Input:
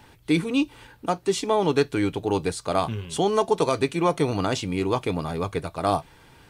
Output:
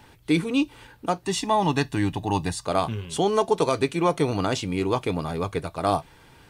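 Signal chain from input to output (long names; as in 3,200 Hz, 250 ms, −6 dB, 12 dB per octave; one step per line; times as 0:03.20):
0:01.24–0:02.65: comb filter 1.1 ms, depth 68%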